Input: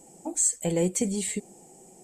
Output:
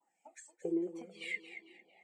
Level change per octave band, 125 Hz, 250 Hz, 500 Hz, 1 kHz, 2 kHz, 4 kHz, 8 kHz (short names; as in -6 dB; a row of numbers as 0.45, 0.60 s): -25.0, -9.5, -11.5, -16.5, +1.5, -10.5, -32.5 dB